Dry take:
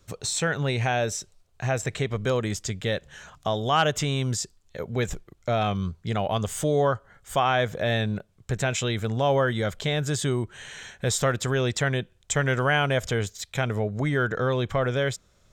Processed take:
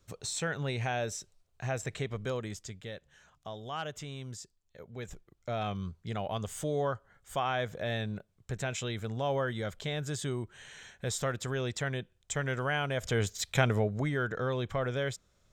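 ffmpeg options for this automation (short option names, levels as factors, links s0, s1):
-af "volume=2.99,afade=t=out:st=2.04:d=0.88:silence=0.398107,afade=t=in:st=4.96:d=0.71:silence=0.446684,afade=t=in:st=12.96:d=0.52:silence=0.298538,afade=t=out:st=13.48:d=0.65:silence=0.354813"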